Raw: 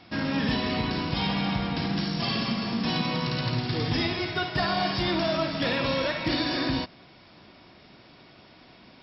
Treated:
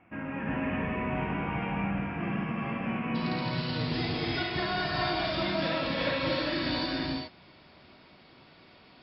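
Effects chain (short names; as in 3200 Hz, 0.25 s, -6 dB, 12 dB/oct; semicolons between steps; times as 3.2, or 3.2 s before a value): elliptic low-pass 2600 Hz, stop band 40 dB, from 3.14 s 4800 Hz; non-linear reverb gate 0.45 s rising, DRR -4 dB; gain -7.5 dB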